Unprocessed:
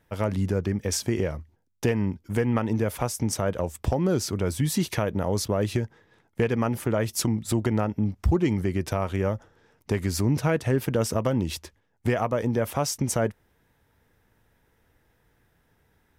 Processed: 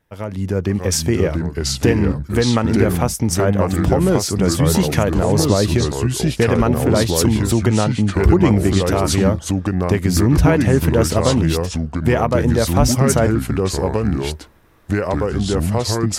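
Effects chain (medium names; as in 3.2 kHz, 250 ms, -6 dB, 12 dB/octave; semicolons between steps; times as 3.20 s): level rider gain up to 12 dB; ever faster or slower copies 559 ms, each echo -3 st, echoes 2; trim -2 dB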